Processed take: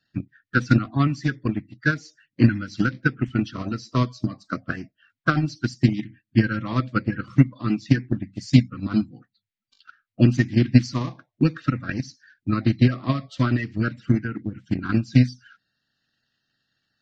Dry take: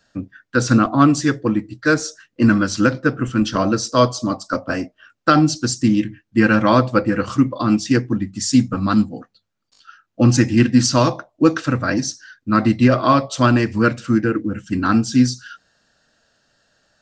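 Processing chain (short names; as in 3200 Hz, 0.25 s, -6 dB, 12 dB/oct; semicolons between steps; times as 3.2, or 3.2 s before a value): bin magnitudes rounded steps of 30 dB; graphic EQ 125/250/500/1000/2000/4000/8000 Hz +10/+7/-6/-4/+11/+7/-7 dB; transient shaper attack +11 dB, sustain -1 dB; gain -17.5 dB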